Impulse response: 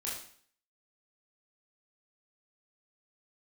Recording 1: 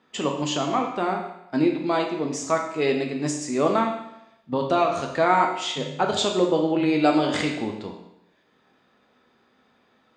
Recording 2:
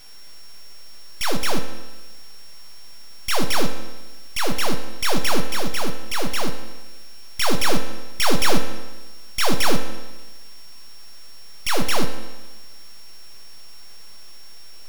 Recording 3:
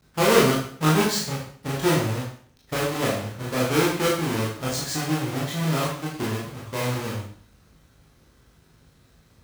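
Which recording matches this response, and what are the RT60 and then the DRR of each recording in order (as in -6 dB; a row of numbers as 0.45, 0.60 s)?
3; 0.85, 1.2, 0.55 s; 1.5, 6.0, -6.0 dB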